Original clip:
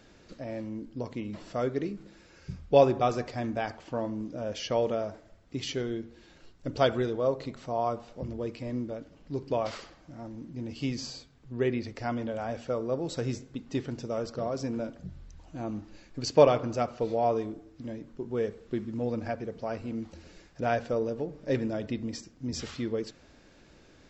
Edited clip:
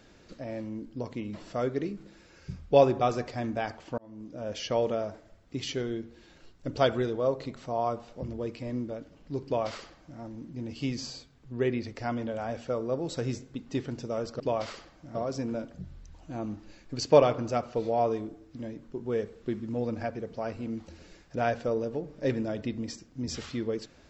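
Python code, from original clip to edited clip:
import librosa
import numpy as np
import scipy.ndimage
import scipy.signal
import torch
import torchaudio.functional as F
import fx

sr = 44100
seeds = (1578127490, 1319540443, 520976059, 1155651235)

y = fx.edit(x, sr, fx.fade_in_span(start_s=3.98, length_s=0.57),
    fx.duplicate(start_s=9.45, length_s=0.75, to_s=14.4), tone=tone)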